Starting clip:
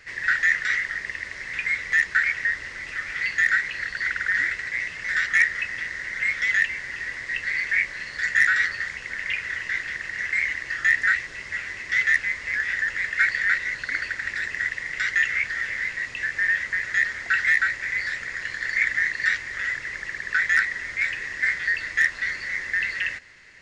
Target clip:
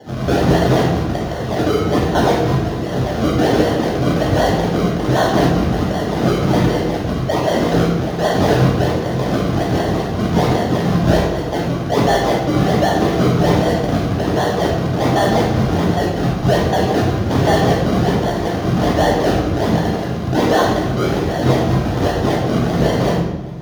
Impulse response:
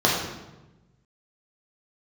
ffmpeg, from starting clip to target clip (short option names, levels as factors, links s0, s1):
-filter_complex "[0:a]acrusher=samples=34:mix=1:aa=0.000001:lfo=1:lforange=34:lforate=1.3,volume=15.8,asoftclip=hard,volume=0.0631[s0];[1:a]atrim=start_sample=2205,asetrate=42777,aresample=44100[s1];[s0][s1]afir=irnorm=-1:irlink=0,volume=0.422"